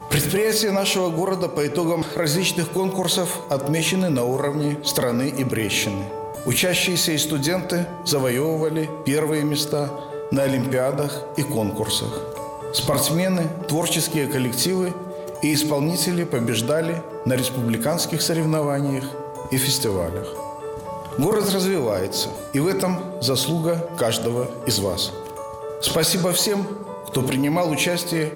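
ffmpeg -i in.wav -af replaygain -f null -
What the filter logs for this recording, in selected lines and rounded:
track_gain = +2.4 dB
track_peak = 0.254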